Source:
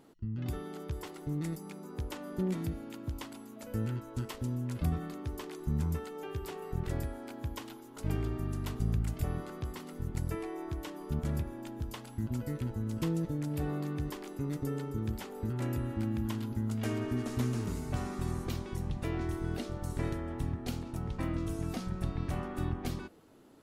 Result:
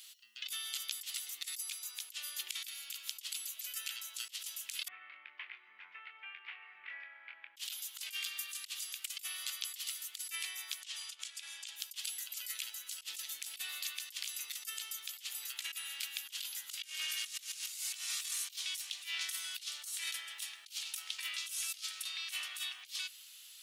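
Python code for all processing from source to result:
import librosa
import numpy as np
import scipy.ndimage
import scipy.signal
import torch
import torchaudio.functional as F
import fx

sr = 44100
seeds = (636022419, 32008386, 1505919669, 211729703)

y = fx.chain(x, sr, fx.ellip_lowpass(hz=2200.0, order=4, stop_db=80),
    fx.doubler(ms=24.0, db=-7), at=(4.88, 7.57))
y = fx.chain(y, sr, fx.lowpass(hz=9100.0, slope=24),
    fx.low_shelf(hz=400.0, db=-10.0),
    fx.over_compress(threshold_db=-44.0, ratio=-0.5), at=(10.81, 11.76))
y = fx.chain(y, sr, fx.low_shelf(hz=380.0, db=-3.5),
    fx.clip_hard(threshold_db=-32.5), at=(18.02, 18.94))
y = scipy.signal.sosfilt(scipy.signal.cheby1(3, 1.0, 3000.0, 'highpass', fs=sr, output='sos'), y)
y = fx.over_compress(y, sr, threshold_db=-58.0, ratio=-0.5)
y = F.gain(torch.from_numpy(y), 17.5).numpy()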